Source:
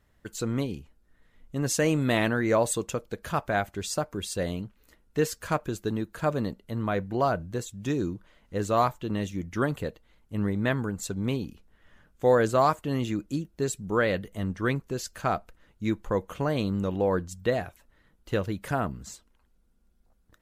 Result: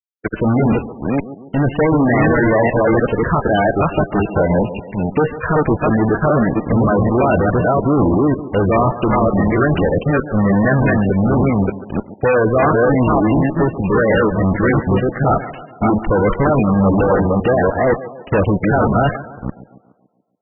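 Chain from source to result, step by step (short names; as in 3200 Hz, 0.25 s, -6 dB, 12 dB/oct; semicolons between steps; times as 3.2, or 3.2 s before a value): reverse delay 0.3 s, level -2.5 dB; high shelf 4900 Hz -6.5 dB; fuzz box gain 37 dB, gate -41 dBFS; on a send: tape echo 0.142 s, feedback 57%, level -12 dB, low-pass 2100 Hz; on the sum: gain +2 dB; MP3 8 kbps 22050 Hz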